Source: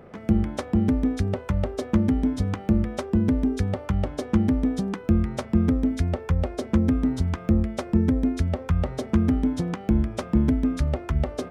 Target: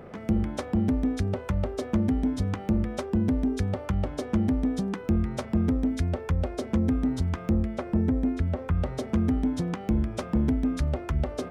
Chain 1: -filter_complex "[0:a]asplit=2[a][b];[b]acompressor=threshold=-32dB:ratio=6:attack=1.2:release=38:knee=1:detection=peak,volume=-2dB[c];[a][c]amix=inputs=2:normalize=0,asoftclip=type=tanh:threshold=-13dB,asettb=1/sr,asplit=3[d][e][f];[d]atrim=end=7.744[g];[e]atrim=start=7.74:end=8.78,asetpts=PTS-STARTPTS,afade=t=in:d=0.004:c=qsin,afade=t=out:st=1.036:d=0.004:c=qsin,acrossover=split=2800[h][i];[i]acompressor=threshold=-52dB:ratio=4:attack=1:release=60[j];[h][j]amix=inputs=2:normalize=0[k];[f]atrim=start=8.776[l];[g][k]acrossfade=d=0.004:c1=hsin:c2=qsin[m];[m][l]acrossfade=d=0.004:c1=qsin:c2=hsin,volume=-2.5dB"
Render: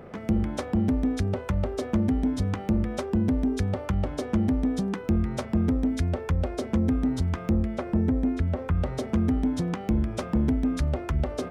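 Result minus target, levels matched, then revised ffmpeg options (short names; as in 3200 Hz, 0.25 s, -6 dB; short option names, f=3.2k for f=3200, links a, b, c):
compressor: peak gain reduction -8 dB
-filter_complex "[0:a]asplit=2[a][b];[b]acompressor=threshold=-41.5dB:ratio=6:attack=1.2:release=38:knee=1:detection=peak,volume=-2dB[c];[a][c]amix=inputs=2:normalize=0,asoftclip=type=tanh:threshold=-13dB,asettb=1/sr,asplit=3[d][e][f];[d]atrim=end=7.744[g];[e]atrim=start=7.74:end=8.78,asetpts=PTS-STARTPTS,afade=t=in:d=0.004:c=qsin,afade=t=out:st=1.036:d=0.004:c=qsin,acrossover=split=2800[h][i];[i]acompressor=threshold=-52dB:ratio=4:attack=1:release=60[j];[h][j]amix=inputs=2:normalize=0[k];[f]atrim=start=8.776[l];[g][k]acrossfade=d=0.004:c1=hsin:c2=qsin[m];[m][l]acrossfade=d=0.004:c1=qsin:c2=hsin,volume=-2.5dB"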